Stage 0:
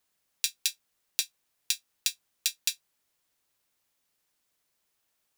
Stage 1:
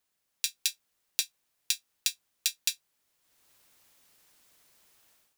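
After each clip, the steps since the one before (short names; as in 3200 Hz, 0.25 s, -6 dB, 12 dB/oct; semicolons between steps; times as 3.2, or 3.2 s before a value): AGC gain up to 16 dB; gain -3 dB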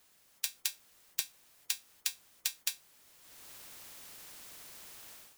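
spectral compressor 2:1; gain -2 dB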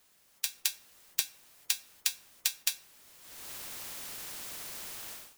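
AGC gain up to 8.5 dB; on a send at -16 dB: reverb RT60 0.65 s, pre-delay 5 ms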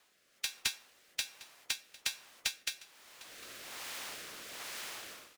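rotary speaker horn 1.2 Hz; overdrive pedal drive 18 dB, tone 2500 Hz, clips at -6.5 dBFS; echo 0.753 s -20.5 dB; gain -4 dB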